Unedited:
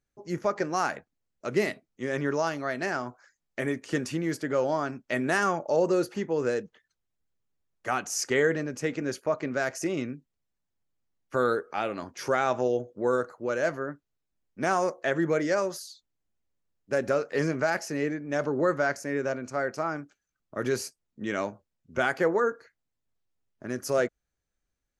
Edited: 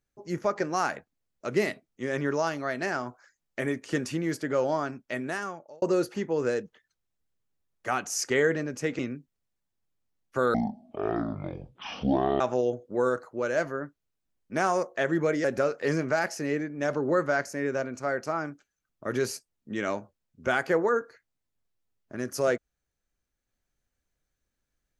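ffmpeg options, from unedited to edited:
ffmpeg -i in.wav -filter_complex "[0:a]asplit=6[link_01][link_02][link_03][link_04][link_05][link_06];[link_01]atrim=end=5.82,asetpts=PTS-STARTPTS,afade=type=out:start_time=4.75:duration=1.07[link_07];[link_02]atrim=start=5.82:end=8.992,asetpts=PTS-STARTPTS,afade=type=in:duration=0.004:curve=hsin[link_08];[link_03]atrim=start=9.968:end=11.524[link_09];[link_04]atrim=start=11.52:end=12.47,asetpts=PTS-STARTPTS,asetrate=22491,aresample=44100,atrim=end_sample=82147,asetpts=PTS-STARTPTS[link_10];[link_05]atrim=start=12.466:end=15.512[link_11];[link_06]atrim=start=16.948[link_12];[link_07][link_08]concat=n=2:v=0:a=1[link_13];[link_13][link_09]acrossfade=duration=0.004:curve1=hsin:curve2=hsin[link_14];[link_14][link_10]acrossfade=duration=0.004:curve1=hsin:curve2=hsin[link_15];[link_15][link_11]acrossfade=duration=0.004:curve1=hsin:curve2=hsin[link_16];[link_16][link_12]acrossfade=duration=0.004:curve1=hsin:curve2=hsin" out.wav

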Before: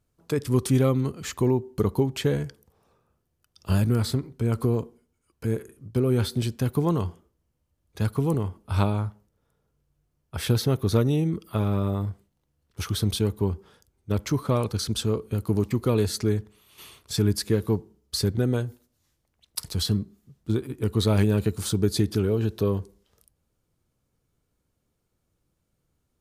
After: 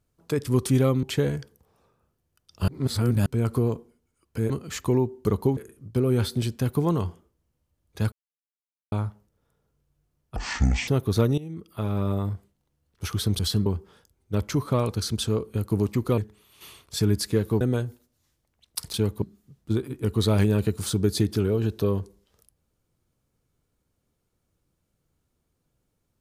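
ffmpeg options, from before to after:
ffmpeg -i in.wav -filter_complex "[0:a]asplit=17[link_01][link_02][link_03][link_04][link_05][link_06][link_07][link_08][link_09][link_10][link_11][link_12][link_13][link_14][link_15][link_16][link_17];[link_01]atrim=end=1.032[link_18];[link_02]atrim=start=2.098:end=3.752[link_19];[link_03]atrim=start=3.748:end=4.332,asetpts=PTS-STARTPTS,areverse[link_20];[link_04]atrim=start=4.328:end=5.572[link_21];[link_05]atrim=start=1.028:end=2.102[link_22];[link_06]atrim=start=5.568:end=8.12,asetpts=PTS-STARTPTS,afade=type=out:start_time=2.548:duration=0.004:curve=hsin[link_23];[link_07]atrim=start=8.12:end=8.92,asetpts=PTS-STARTPTS,volume=0[link_24];[link_08]atrim=start=8.92:end=10.364,asetpts=PTS-STARTPTS,afade=type=in:duration=0.004:curve=hsin[link_25];[link_09]atrim=start=10.36:end=10.64,asetpts=PTS-STARTPTS,asetrate=23814,aresample=44100[link_26];[link_10]atrim=start=10.636:end=11.14,asetpts=PTS-STARTPTS,afade=type=out:start_time=0.5:duration=0.004:curve=hsin:silence=0.125893[link_27];[link_11]atrim=start=11.14:end=13.152,asetpts=PTS-STARTPTS,afade=type=in:duration=0.73:silence=0.125893[link_28];[link_12]atrim=start=19.738:end=20.012[link_29];[link_13]atrim=start=13.428:end=15.952[link_30];[link_14]atrim=start=16.348:end=17.782[link_31];[link_15]atrim=start=18.408:end=19.742[link_32];[link_16]atrim=start=13.148:end=13.432[link_33];[link_17]atrim=start=20.008[link_34];[link_18][link_19]acrossfade=duration=0.004:curve1=hsin:curve2=hsin[link_35];[link_35][link_20]acrossfade=duration=0.004:curve1=hsin:curve2=hsin[link_36];[link_36][link_21]acrossfade=duration=0.004:curve1=hsin:curve2=hsin[link_37];[link_37][link_22]acrossfade=duration=0.004:curve1=hsin:curve2=hsin[link_38];[link_23][link_24][link_25]concat=n=3:v=0:a=1[link_39];[link_38][link_39]acrossfade=duration=0.004:curve1=hsin:curve2=hsin[link_40];[link_40][link_26]acrossfade=duration=0.004:curve1=hsin:curve2=hsin[link_41];[link_27][link_28]concat=n=2:v=0:a=1[link_42];[link_41][link_42]acrossfade=duration=0.004:curve1=hsin:curve2=hsin[link_43];[link_43][link_29]acrossfade=duration=0.004:curve1=hsin:curve2=hsin[link_44];[link_44][link_30]acrossfade=duration=0.004:curve1=hsin:curve2=hsin[link_45];[link_45][link_31]acrossfade=duration=0.004:curve1=hsin:curve2=hsin[link_46];[link_46][link_32]acrossfade=duration=0.004:curve1=hsin:curve2=hsin[link_47];[link_47][link_33]acrossfade=duration=0.004:curve1=hsin:curve2=hsin[link_48];[link_48][link_34]acrossfade=duration=0.004:curve1=hsin:curve2=hsin" out.wav

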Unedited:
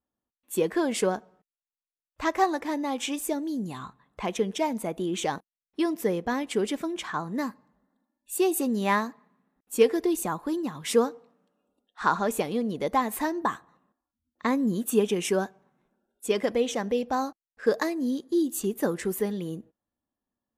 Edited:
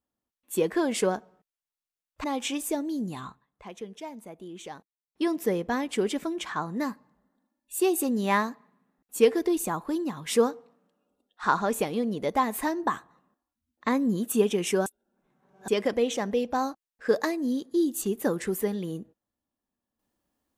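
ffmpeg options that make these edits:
ffmpeg -i in.wav -filter_complex "[0:a]asplit=6[link_01][link_02][link_03][link_04][link_05][link_06];[link_01]atrim=end=2.242[link_07];[link_02]atrim=start=2.818:end=4.04,asetpts=PTS-STARTPTS,afade=type=out:start_time=0.952:duration=0.27:curve=qsin:silence=0.237137[link_08];[link_03]atrim=start=4.04:end=5.62,asetpts=PTS-STARTPTS,volume=-12.5dB[link_09];[link_04]atrim=start=5.62:end=15.442,asetpts=PTS-STARTPTS,afade=type=in:duration=0.27:curve=qsin:silence=0.237137[link_10];[link_05]atrim=start=15.438:end=16.262,asetpts=PTS-STARTPTS,areverse[link_11];[link_06]atrim=start=16.258[link_12];[link_08][link_09][link_10]concat=n=3:v=0:a=1[link_13];[link_07][link_13]acrossfade=duration=0.004:curve1=hsin:curve2=hsin[link_14];[link_14][link_11]acrossfade=duration=0.004:curve1=hsin:curve2=hsin[link_15];[link_15][link_12]acrossfade=duration=0.004:curve1=hsin:curve2=hsin" out.wav

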